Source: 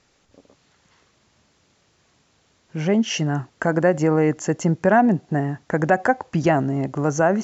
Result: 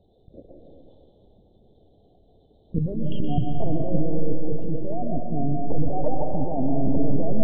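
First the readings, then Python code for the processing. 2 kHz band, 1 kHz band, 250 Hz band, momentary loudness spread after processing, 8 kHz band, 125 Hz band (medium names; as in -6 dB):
under -35 dB, -10.5 dB, -5.5 dB, 5 LU, no reading, -3.5 dB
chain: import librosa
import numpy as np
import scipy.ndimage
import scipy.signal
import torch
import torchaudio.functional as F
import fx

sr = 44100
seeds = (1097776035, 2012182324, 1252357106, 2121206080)

p1 = fx.spec_gate(x, sr, threshold_db=-15, keep='strong')
p2 = scipy.signal.sosfilt(scipy.signal.cheby2(4, 50, [1200.0, 2500.0], 'bandstop', fs=sr, output='sos'), p1)
p3 = fx.over_compress(p2, sr, threshold_db=-27.0, ratio=-1.0)
p4 = fx.lpc_vocoder(p3, sr, seeds[0], excitation='pitch_kept', order=10)
p5 = p4 + fx.echo_thinned(p4, sr, ms=123, feedback_pct=60, hz=420.0, wet_db=-11.0, dry=0)
y = fx.rev_freeverb(p5, sr, rt60_s=1.8, hf_ratio=0.7, predelay_ms=115, drr_db=1.5)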